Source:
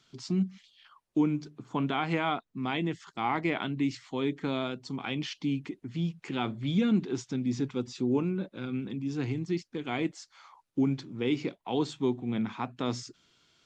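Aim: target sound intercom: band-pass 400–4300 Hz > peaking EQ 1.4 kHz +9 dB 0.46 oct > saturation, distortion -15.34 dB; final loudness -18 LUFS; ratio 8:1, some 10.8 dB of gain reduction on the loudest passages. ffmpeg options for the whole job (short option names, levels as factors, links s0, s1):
-af "acompressor=threshold=0.0224:ratio=8,highpass=400,lowpass=4300,equalizer=f=1400:t=o:w=0.46:g=9,asoftclip=threshold=0.0335,volume=17.8"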